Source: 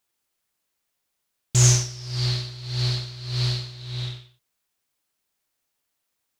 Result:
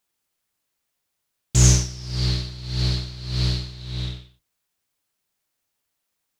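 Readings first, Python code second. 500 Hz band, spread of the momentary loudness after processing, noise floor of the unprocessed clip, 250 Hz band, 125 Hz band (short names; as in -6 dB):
+1.5 dB, 15 LU, -79 dBFS, +5.0 dB, +1.0 dB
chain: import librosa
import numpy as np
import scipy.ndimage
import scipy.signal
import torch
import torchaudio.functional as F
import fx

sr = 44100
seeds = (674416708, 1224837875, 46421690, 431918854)

y = fx.octave_divider(x, sr, octaves=1, level_db=-2.0)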